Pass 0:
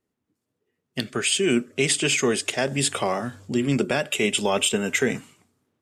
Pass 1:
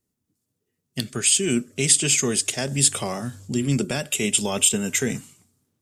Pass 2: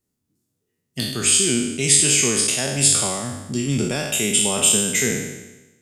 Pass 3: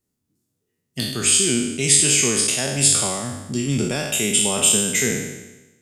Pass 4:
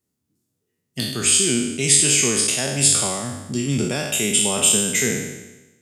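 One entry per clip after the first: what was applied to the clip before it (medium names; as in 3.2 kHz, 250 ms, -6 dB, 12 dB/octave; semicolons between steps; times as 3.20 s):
tone controls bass +10 dB, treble +14 dB; trim -5.5 dB
spectral sustain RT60 1.04 s; trim -1 dB
no audible change
high-pass 57 Hz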